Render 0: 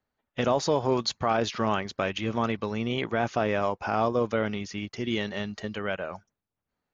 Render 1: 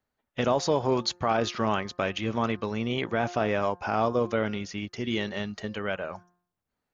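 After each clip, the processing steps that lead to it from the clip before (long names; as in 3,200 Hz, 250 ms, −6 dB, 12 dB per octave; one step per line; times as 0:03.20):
hum removal 176.9 Hz, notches 10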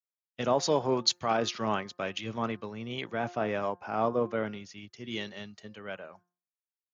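high-pass filter 110 Hz
multiband upward and downward expander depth 100%
level −4 dB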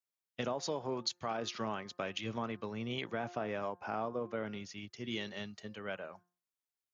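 downward compressor 5 to 1, threshold −34 dBFS, peak gain reduction 13 dB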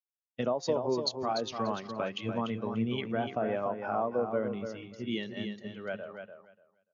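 on a send: repeating echo 293 ms, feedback 31%, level −5 dB
on the sum: every bin expanded away from the loudest bin 1.5 to 1
level +4 dB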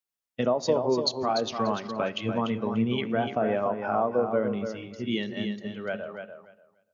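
on a send at −15.5 dB: low-pass filter 2,100 Hz 6 dB per octave + convolution reverb RT60 0.95 s, pre-delay 4 ms
on the sum: level +5 dB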